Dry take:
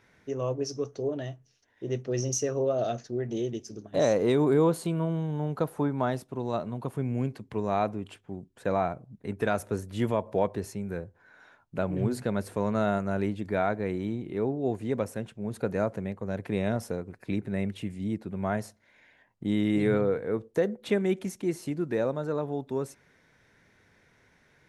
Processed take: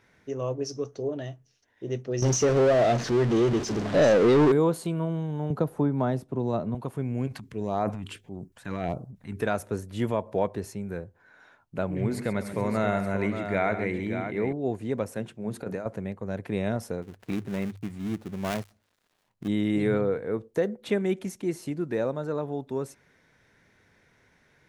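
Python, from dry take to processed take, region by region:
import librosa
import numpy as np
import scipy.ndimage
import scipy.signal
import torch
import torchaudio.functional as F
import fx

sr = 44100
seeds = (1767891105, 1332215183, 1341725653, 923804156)

y = fx.chain(x, sr, fx.zero_step(step_db=-34.0),
    fx.leveller(passes=2),
    fx.air_absorb(metres=90.0), at=(2.22, 4.52))
y = fx.chain(y, sr, fx.tilt_shelf(db=5.0, hz=680.0),
    fx.band_squash(depth_pct=40), at=(5.5, 6.75))
y = fx.chain(y, sr, fx.transient(attack_db=-2, sustain_db=9),
    fx.filter_lfo_notch(shape='saw_up', hz=1.6, low_hz=260.0, high_hz=4100.0, q=0.72), at=(7.27, 9.41))
y = fx.chain(y, sr, fx.peak_eq(hz=2100.0, db=12.5, octaves=0.32),
    fx.echo_multitap(ms=(86, 131, 577), db=(-14.5, -12.0, -8.0)), at=(11.95, 14.53))
y = fx.chain(y, sr, fx.highpass(hz=100.0, slope=12),
    fx.hum_notches(base_hz=50, count=8),
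    fx.over_compress(threshold_db=-30.0, ratio=-0.5), at=(15.12, 15.86))
y = fx.chain(y, sr, fx.dead_time(dead_ms=0.27),
    fx.hum_notches(base_hz=50, count=2), at=(17.02, 19.48))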